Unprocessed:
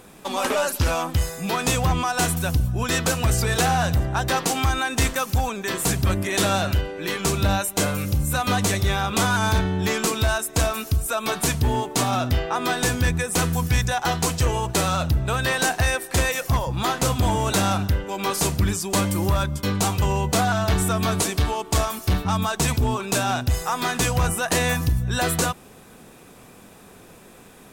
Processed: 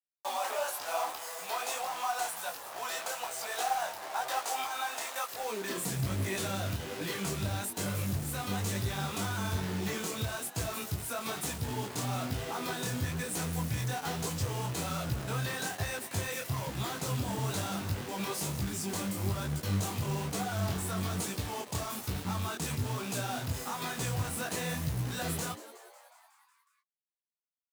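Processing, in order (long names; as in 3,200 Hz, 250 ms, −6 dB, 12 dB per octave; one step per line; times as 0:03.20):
high-shelf EQ 4,300 Hz +3 dB
downward compressor 4 to 1, threshold −25 dBFS, peak gain reduction 7.5 dB
harmonic generator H 3 −21 dB, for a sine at −14 dBFS
bit-depth reduction 6 bits, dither none
soft clipping −26.5 dBFS, distortion −14 dB
high-pass filter sweep 710 Hz → 110 Hz, 0:05.24–0:05.99
echo with shifted repeats 183 ms, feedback 64%, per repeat +140 Hz, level −16.5 dB
floating-point word with a short mantissa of 2 bits
micro pitch shift up and down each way 39 cents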